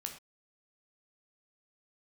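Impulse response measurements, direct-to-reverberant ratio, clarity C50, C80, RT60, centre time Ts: 3.0 dB, 8.5 dB, 12.5 dB, no single decay rate, 16 ms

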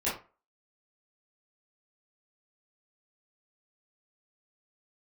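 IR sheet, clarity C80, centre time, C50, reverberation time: 12.5 dB, 35 ms, 5.5 dB, 0.35 s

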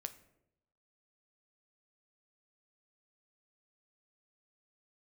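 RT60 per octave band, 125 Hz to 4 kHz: 1.0 s, 0.90 s, 0.95 s, 0.70 s, 0.60 s, 0.45 s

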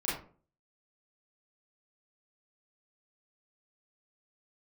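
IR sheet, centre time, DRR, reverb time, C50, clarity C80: 48 ms, -8.5 dB, 0.40 s, 3.0 dB, 9.0 dB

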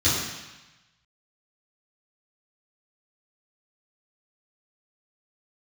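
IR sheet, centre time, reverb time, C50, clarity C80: 78 ms, 1.0 s, 0.5 dB, 3.0 dB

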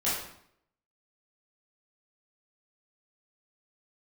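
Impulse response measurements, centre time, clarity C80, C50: 59 ms, 5.0 dB, 0.5 dB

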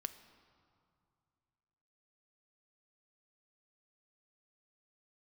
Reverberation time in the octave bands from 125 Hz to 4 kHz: 3.0 s, 2.6 s, 2.3 s, 2.5 s, 1.8 s, 1.5 s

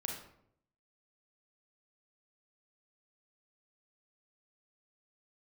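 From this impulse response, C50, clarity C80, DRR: 3.5 dB, 8.0 dB, 0.0 dB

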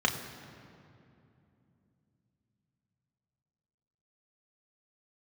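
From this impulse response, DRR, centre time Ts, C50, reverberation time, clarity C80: 1.5 dB, 34 ms, 8.5 dB, 2.7 s, 9.0 dB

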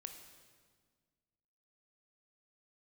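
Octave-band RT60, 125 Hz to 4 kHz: 2.1 s, 2.1 s, 1.7 s, 1.6 s, 1.4 s, 1.4 s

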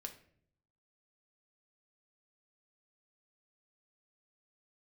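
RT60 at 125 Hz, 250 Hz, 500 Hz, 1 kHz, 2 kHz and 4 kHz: 1.0 s, 0.85 s, 0.75 s, 0.50 s, 0.55 s, 0.40 s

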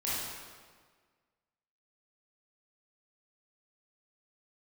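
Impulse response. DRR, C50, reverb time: -9.5 dB, -3.5 dB, 1.6 s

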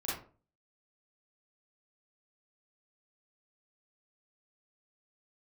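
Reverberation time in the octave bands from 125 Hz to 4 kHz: 0.50 s, 0.45 s, 0.45 s, 0.35 s, 0.30 s, 0.25 s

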